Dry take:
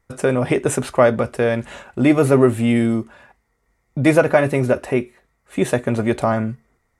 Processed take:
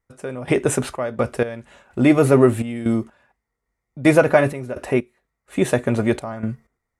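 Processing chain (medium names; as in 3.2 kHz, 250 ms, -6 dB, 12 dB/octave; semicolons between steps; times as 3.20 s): trance gate "..xx.x..xxx.x.." 63 bpm -12 dB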